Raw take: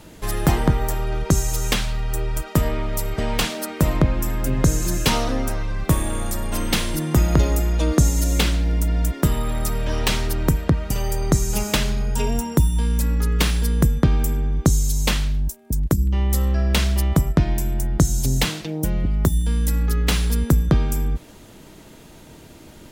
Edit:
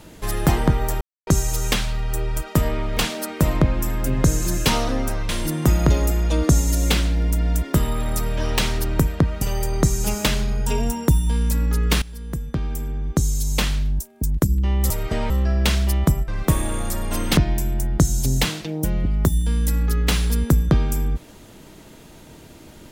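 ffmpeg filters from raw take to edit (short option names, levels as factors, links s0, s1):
-filter_complex "[0:a]asplit=10[s0][s1][s2][s3][s4][s5][s6][s7][s8][s9];[s0]atrim=end=1.01,asetpts=PTS-STARTPTS,afade=t=out:st=1.006:d=0.004:c=hsin[s10];[s1]atrim=start=1.01:end=1.27,asetpts=PTS-STARTPTS,volume=0[s11];[s2]atrim=start=1.27:end=2.972,asetpts=PTS-STARTPTS,afade=t=in:d=0.004:c=hsin[s12];[s3]atrim=start=3.368:end=5.692[s13];[s4]atrim=start=6.778:end=13.51,asetpts=PTS-STARTPTS,afade=t=out:st=6.728:d=0.004:c=hsin:silence=0.11885[s14];[s5]atrim=start=13.51:end=16.392,asetpts=PTS-STARTPTS,afade=t=in:d=1.77:silence=0.11885[s15];[s6]atrim=start=2.968:end=3.372[s16];[s7]atrim=start=16.388:end=17.372[s17];[s8]atrim=start=5.688:end=6.782[s18];[s9]atrim=start=17.368[s19];[s10][s11][s12]concat=n=3:v=0:a=1[s20];[s20][s13]acrossfade=d=0.004:c1=hsin:c2=hsin[s21];[s14][s15]concat=n=2:v=0:a=1[s22];[s21][s22]acrossfade=d=0.004:c1=hsin:c2=hsin[s23];[s23][s16]acrossfade=d=0.004:c1=hsin:c2=hsin[s24];[s24][s17]acrossfade=d=0.004:c1=hsin:c2=hsin[s25];[s25][s18]acrossfade=d=0.004:c1=hsin:c2=hsin[s26];[s26][s19]acrossfade=d=0.004:c1=hsin:c2=hsin"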